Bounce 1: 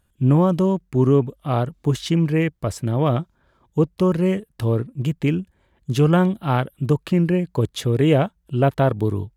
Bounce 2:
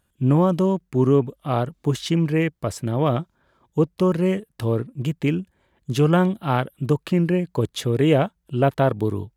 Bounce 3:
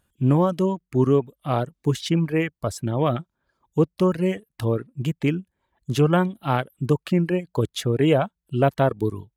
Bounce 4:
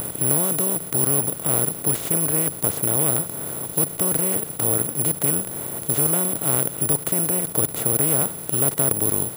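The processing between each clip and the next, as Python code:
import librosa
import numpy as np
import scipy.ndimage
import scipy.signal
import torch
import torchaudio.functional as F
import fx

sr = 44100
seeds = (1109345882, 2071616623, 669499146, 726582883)

y1 = fx.low_shelf(x, sr, hz=83.0, db=-9.5)
y2 = fx.dereverb_blind(y1, sr, rt60_s=0.91)
y3 = fx.bin_compress(y2, sr, power=0.2)
y3 = fx.low_shelf(y3, sr, hz=120.0, db=8.5)
y3 = (np.kron(y3[::4], np.eye(4)[0]) * 4)[:len(y3)]
y3 = y3 * librosa.db_to_amplitude(-15.0)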